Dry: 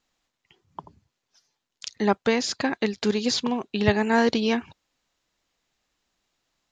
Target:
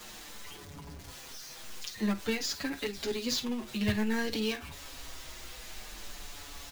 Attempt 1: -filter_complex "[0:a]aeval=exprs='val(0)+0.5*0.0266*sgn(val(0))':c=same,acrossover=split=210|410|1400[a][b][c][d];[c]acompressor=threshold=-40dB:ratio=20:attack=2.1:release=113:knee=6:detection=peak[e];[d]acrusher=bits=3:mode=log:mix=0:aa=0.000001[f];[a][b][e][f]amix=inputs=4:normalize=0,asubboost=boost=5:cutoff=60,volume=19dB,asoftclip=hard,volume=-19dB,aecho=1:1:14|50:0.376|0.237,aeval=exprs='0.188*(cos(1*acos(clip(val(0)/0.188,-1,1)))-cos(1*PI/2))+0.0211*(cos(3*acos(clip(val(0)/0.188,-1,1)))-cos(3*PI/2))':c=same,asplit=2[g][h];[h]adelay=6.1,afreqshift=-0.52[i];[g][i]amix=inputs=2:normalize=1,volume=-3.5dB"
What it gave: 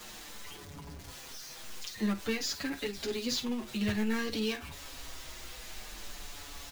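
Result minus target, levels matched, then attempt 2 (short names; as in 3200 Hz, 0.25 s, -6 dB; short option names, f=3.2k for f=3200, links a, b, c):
overloaded stage: distortion +32 dB
-filter_complex "[0:a]aeval=exprs='val(0)+0.5*0.0266*sgn(val(0))':c=same,acrossover=split=210|410|1400[a][b][c][d];[c]acompressor=threshold=-40dB:ratio=20:attack=2.1:release=113:knee=6:detection=peak[e];[d]acrusher=bits=3:mode=log:mix=0:aa=0.000001[f];[a][b][e][f]amix=inputs=4:normalize=0,asubboost=boost=5:cutoff=60,volume=9.5dB,asoftclip=hard,volume=-9.5dB,aecho=1:1:14|50:0.376|0.237,aeval=exprs='0.188*(cos(1*acos(clip(val(0)/0.188,-1,1)))-cos(1*PI/2))+0.0211*(cos(3*acos(clip(val(0)/0.188,-1,1)))-cos(3*PI/2))':c=same,asplit=2[g][h];[h]adelay=6.1,afreqshift=-0.52[i];[g][i]amix=inputs=2:normalize=1,volume=-3.5dB"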